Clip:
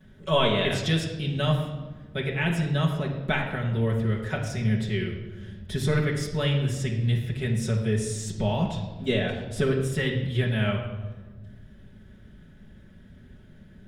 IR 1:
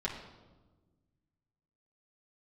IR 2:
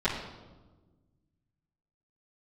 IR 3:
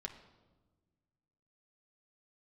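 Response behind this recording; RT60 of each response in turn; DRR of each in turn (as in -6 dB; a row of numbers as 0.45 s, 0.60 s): 2; 1.3 s, 1.3 s, 1.3 s; -6.0 dB, -15.0 dB, 2.0 dB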